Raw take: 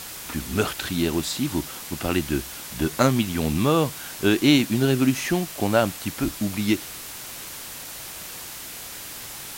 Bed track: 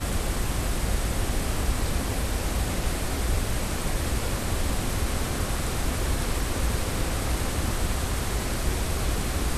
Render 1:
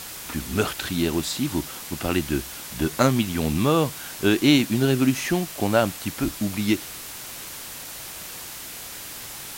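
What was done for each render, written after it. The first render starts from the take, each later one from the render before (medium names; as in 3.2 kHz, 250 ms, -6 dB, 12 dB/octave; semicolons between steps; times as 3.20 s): no audible change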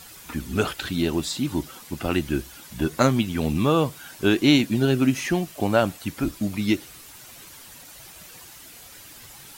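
noise reduction 10 dB, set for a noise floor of -37 dBFS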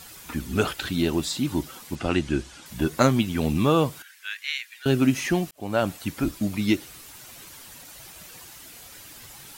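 1.95–2.66 s: low-pass 8.5 kHz 24 dB/octave; 4.02–4.86 s: ladder high-pass 1.6 kHz, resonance 55%; 5.51–5.93 s: fade in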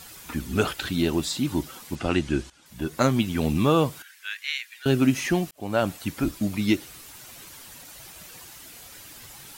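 2.50–3.26 s: fade in, from -15 dB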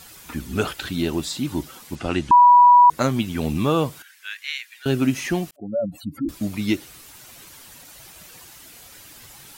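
2.31–2.90 s: bleep 976 Hz -7.5 dBFS; 5.56–6.29 s: spectral contrast enhancement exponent 3.4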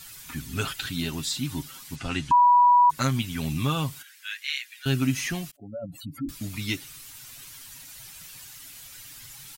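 peaking EQ 480 Hz -13.5 dB 2.3 oct; comb 7.4 ms, depth 51%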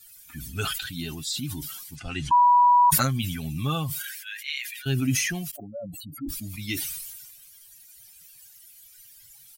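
expander on every frequency bin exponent 1.5; decay stretcher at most 35 dB/s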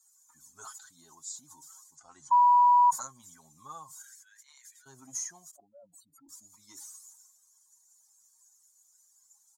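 saturation -16.5 dBFS, distortion -15 dB; two resonant band-passes 2.6 kHz, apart 2.8 oct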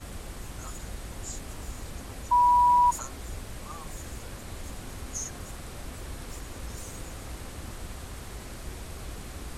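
add bed track -13 dB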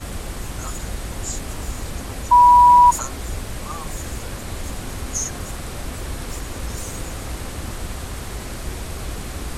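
trim +10 dB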